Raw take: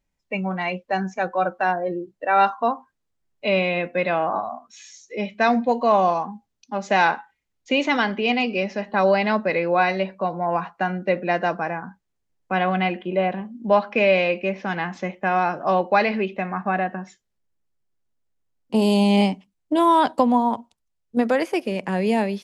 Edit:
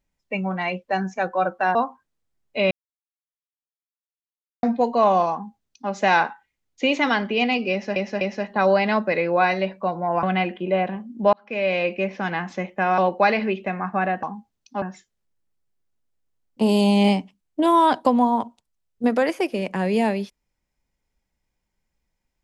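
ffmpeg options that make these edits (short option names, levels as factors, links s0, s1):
-filter_complex "[0:a]asplit=11[s0][s1][s2][s3][s4][s5][s6][s7][s8][s9][s10];[s0]atrim=end=1.752[s11];[s1]atrim=start=2.628:end=3.59,asetpts=PTS-STARTPTS,afade=t=out:st=0.958:d=0.004:c=hsin[s12];[s2]atrim=start=3.59:end=5.51,asetpts=PTS-STARTPTS,volume=0[s13];[s3]atrim=start=5.51:end=8.842,asetpts=PTS-STARTPTS,afade=t=in:d=0.004:c=hsin[s14];[s4]atrim=start=8.588:end=8.842[s15];[s5]atrim=start=8.588:end=10.612[s16];[s6]atrim=start=12.678:end=13.78,asetpts=PTS-STARTPTS,afade=t=out:st=1.098:d=0.004:c=hsin[s17];[s7]atrim=start=13.78:end=15.432,asetpts=PTS-STARTPTS,afade=t=in:d=0.59[s18];[s8]atrim=start=15.698:end=16.952[s19];[s9]atrim=start=6.198:end=6.792[s20];[s10]atrim=start=16.948[s21];[s12][s13][s14]concat=n=3:v=0:a=1[s22];[s11][s22]acrossfade=d=0.004:c1=hsin:c2=hsin[s23];[s23][s15]acrossfade=d=0.004:c1=hsin:c2=hsin[s24];[s24][s16]acrossfade=d=0.004:c1=hsin:c2=hsin[s25];[s17][s18]concat=n=2:v=0:a=1[s26];[s25][s26]acrossfade=d=0.004:c1=hsin:c2=hsin[s27];[s27][s19]acrossfade=d=0.004:c1=hsin:c2=hsin[s28];[s28][s20]acrossfade=d=0.004:c1=hsin:c2=hsin[s29];[s29][s21]acrossfade=d=0.004:c1=hsin:c2=hsin"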